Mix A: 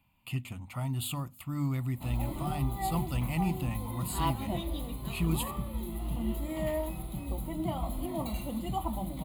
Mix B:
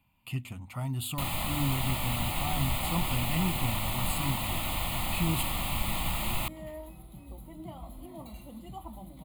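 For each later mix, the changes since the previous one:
first sound: unmuted; second sound -10.0 dB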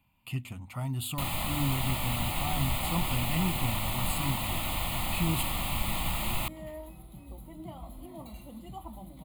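no change

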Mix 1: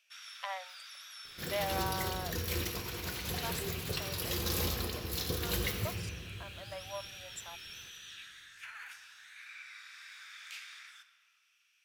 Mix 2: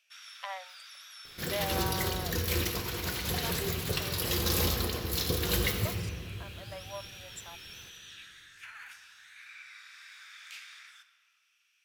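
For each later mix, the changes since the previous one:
second sound +5.0 dB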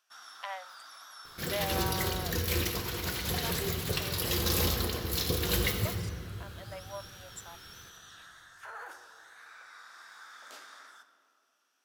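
first sound: remove resonant high-pass 2.4 kHz, resonance Q 5.4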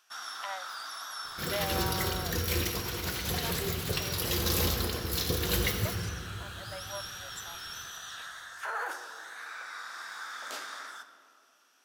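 first sound +9.5 dB

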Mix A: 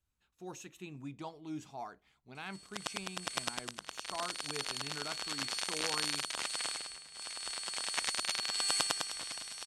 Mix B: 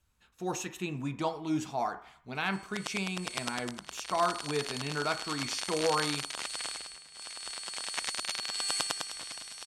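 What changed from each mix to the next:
speech +11.0 dB; reverb: on, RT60 0.60 s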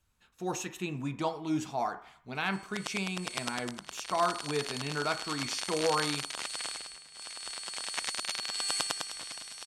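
master: add peaking EQ 64 Hz -5.5 dB 0.29 oct

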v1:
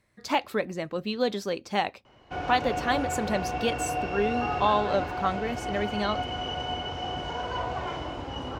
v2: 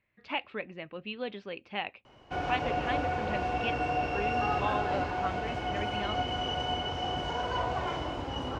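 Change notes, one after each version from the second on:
speech: add four-pole ladder low-pass 3 kHz, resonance 60%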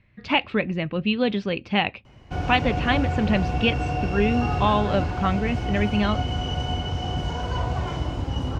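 speech +11.0 dB; master: add tone controls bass +14 dB, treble +7 dB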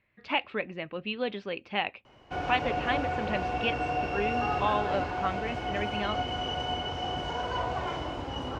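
speech -6.0 dB; master: add tone controls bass -14 dB, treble -7 dB

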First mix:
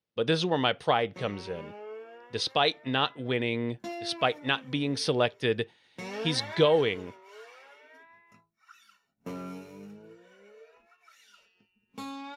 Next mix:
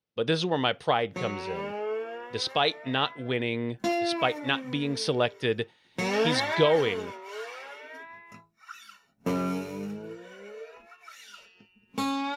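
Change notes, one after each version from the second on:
background +10.5 dB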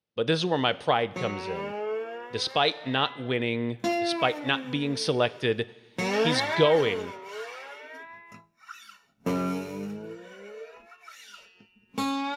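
reverb: on, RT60 1.2 s

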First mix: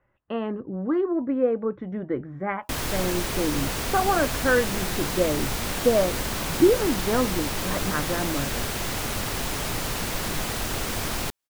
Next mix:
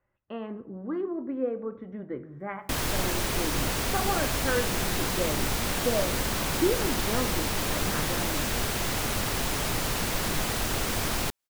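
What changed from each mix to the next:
speech -9.5 dB; reverb: on, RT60 0.75 s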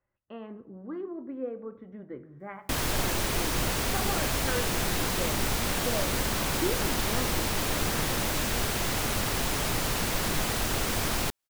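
speech -5.5 dB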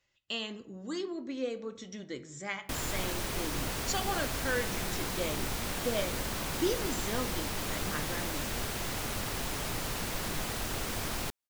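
speech: remove low-pass 1.5 kHz 24 dB/octave; background -6.5 dB

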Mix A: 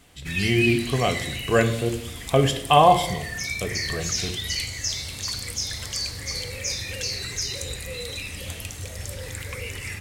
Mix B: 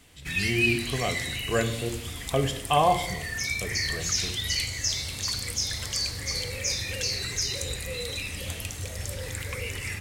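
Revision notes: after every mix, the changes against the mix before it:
speech -6.5 dB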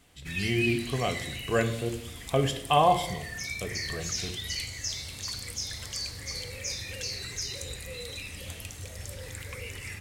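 background -6.0 dB

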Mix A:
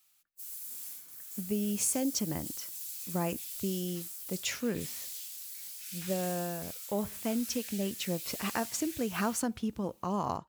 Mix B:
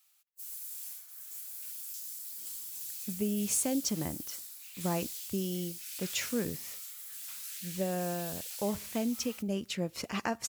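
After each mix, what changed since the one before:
speech: entry +1.70 s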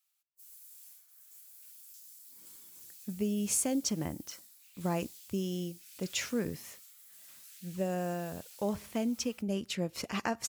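background -11.0 dB

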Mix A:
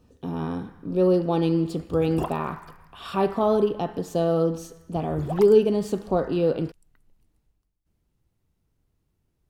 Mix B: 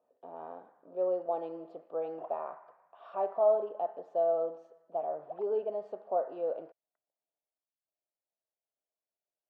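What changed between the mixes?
background -7.5 dB; master: add ladder band-pass 690 Hz, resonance 70%

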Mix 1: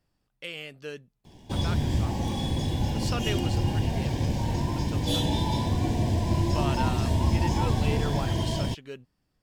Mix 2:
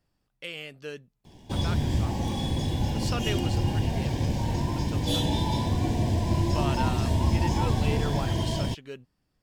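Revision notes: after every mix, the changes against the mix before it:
no change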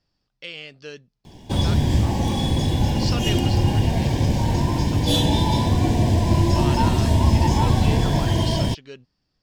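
speech: add resonant low-pass 5.1 kHz, resonance Q 2.9; background +7.0 dB

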